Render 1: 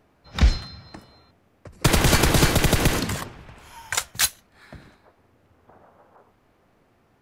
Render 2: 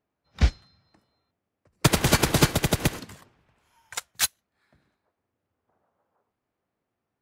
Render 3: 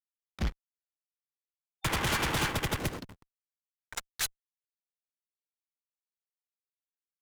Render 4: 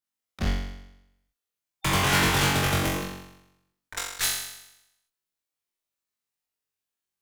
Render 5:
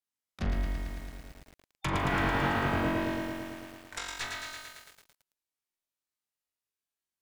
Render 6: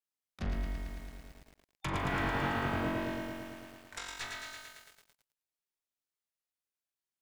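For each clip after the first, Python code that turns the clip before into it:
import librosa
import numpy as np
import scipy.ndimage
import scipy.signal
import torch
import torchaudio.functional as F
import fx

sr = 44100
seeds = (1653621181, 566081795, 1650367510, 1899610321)

y1 = fx.highpass(x, sr, hz=72.0, slope=6)
y1 = fx.upward_expand(y1, sr, threshold_db=-29.0, expansion=2.5)
y1 = F.gain(torch.from_numpy(y1), 1.5).numpy()
y2 = fx.backlash(y1, sr, play_db=-33.5)
y2 = fx.spec_box(y2, sr, start_s=0.45, length_s=2.34, low_hz=790.0, high_hz=3600.0, gain_db=6)
y2 = fx.tube_stage(y2, sr, drive_db=26.0, bias=0.35)
y3 = fx.room_flutter(y2, sr, wall_m=3.7, rt60_s=0.85)
y3 = F.gain(torch.from_numpy(y3), 2.5).numpy()
y4 = fx.env_lowpass_down(y3, sr, base_hz=1600.0, full_db=-22.5)
y4 = fx.doubler(y4, sr, ms=40.0, db=-12.0)
y4 = fx.echo_crushed(y4, sr, ms=111, feedback_pct=80, bits=8, wet_db=-3.5)
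y4 = F.gain(torch.from_numpy(y4), -5.0).numpy()
y5 = y4 + 10.0 ** (-15.0 / 20.0) * np.pad(y4, (int(94 * sr / 1000.0), 0))[:len(y4)]
y5 = F.gain(torch.from_numpy(y5), -4.5).numpy()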